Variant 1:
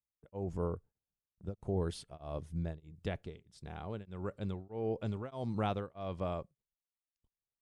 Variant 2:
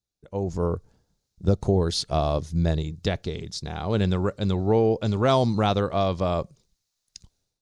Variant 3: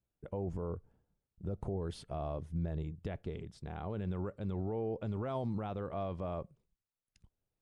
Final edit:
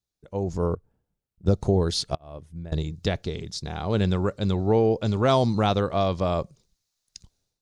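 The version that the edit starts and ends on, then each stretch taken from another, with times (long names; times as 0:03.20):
2
0:00.75–0:01.46: punch in from 3
0:02.15–0:02.72: punch in from 1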